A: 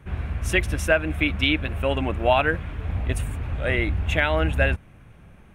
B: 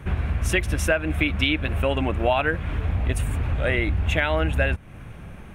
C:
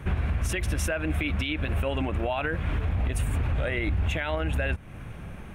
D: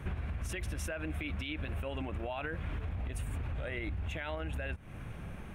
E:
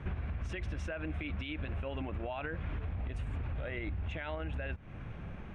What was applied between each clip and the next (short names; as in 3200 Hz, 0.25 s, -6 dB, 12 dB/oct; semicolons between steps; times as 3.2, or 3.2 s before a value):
compressor 2.5:1, threshold -32 dBFS, peak gain reduction 12.5 dB; gain +9 dB
limiter -19 dBFS, peak gain reduction 11.5 dB
compressor, threshold -30 dBFS, peak gain reduction 8 dB; gain -4 dB
air absorption 150 m